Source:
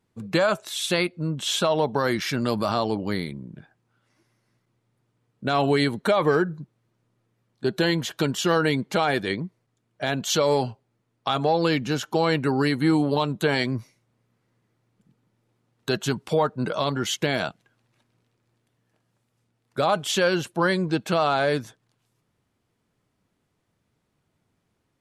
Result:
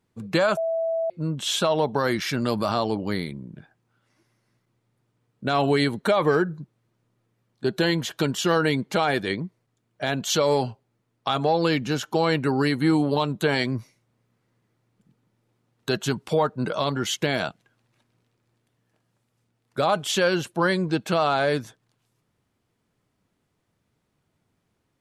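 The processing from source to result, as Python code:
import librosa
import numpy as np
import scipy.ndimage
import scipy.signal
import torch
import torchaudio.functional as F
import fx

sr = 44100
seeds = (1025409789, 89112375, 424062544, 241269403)

y = fx.edit(x, sr, fx.bleep(start_s=0.57, length_s=0.53, hz=657.0, db=-22.0), tone=tone)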